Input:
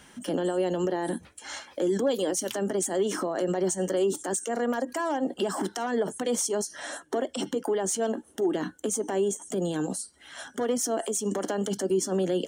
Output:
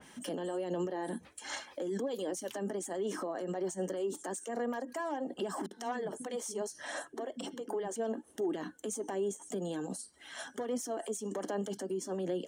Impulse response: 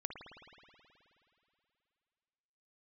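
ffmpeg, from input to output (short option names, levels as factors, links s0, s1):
-filter_complex "[0:a]lowshelf=f=90:g=-11,bandreject=f=1400:w=12,alimiter=level_in=1.41:limit=0.0631:level=0:latency=1:release=165,volume=0.708,aphaser=in_gain=1:out_gain=1:delay=4.7:decay=0.27:speed=1.3:type=sinusoidal,asettb=1/sr,asplit=3[s0][s1][s2];[s0]atrim=end=5.664[s3];[s1]atrim=start=5.66:end=7.96,asetpts=PTS-STARTPTS,afade=t=in:d=0.004:c=qsin,afade=t=out:st=2.296:d=0.004:c=qsin,acrossover=split=280[s4][s5];[s5]adelay=50[s6];[s4][s6]amix=inputs=2:normalize=0,atrim=end_sample=101430[s7];[s2]atrim=start=7.956[s8];[s3][s7]acrossfade=d=0.004:c1=hsin:c2=qsin[s9];[s9][s8]acrossfade=d=0.004:c1=qsin:c2=hsin,adynamicequalizer=threshold=0.00224:dfrequency=2300:dqfactor=0.7:tfrequency=2300:tqfactor=0.7:attack=5:release=100:ratio=0.375:range=2:mode=cutabove:tftype=highshelf,volume=0.794"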